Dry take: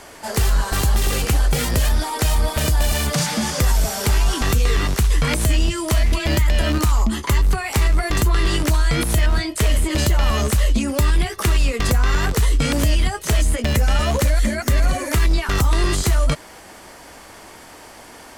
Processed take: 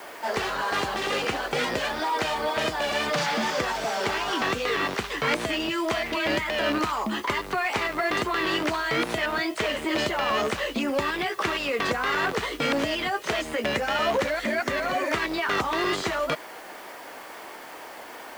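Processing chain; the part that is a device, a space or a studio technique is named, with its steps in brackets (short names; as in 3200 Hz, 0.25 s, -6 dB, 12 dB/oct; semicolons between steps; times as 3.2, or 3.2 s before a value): tape answering machine (BPF 360–3200 Hz; soft clip -18.5 dBFS, distortion -17 dB; wow and flutter; white noise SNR 25 dB); gain +2 dB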